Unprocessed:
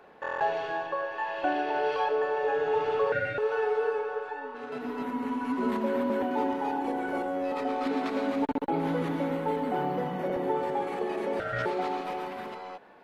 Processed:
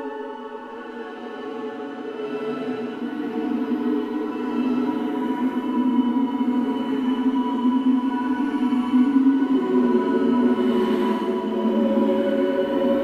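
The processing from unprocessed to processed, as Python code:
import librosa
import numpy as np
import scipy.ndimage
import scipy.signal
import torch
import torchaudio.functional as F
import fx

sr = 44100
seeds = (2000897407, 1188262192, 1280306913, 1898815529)

y = fx.leveller(x, sr, passes=1)
y = fx.small_body(y, sr, hz=(310.0, 3000.0), ring_ms=60, db=17)
y = fx.paulstretch(y, sr, seeds[0], factor=8.5, window_s=0.1, from_s=4.45)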